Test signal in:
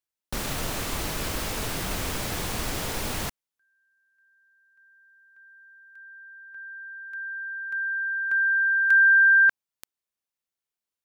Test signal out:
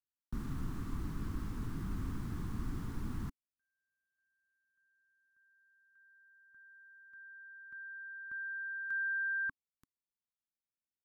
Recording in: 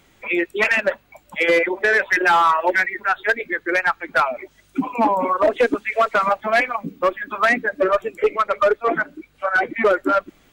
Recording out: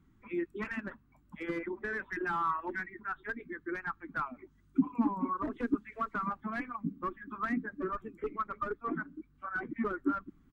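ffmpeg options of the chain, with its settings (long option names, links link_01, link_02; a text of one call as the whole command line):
ffmpeg -i in.wav -af "firequalizer=gain_entry='entry(270,0);entry(560,-27);entry(1100,-9);entry(2400,-23)':delay=0.05:min_phase=1,volume=-4.5dB" out.wav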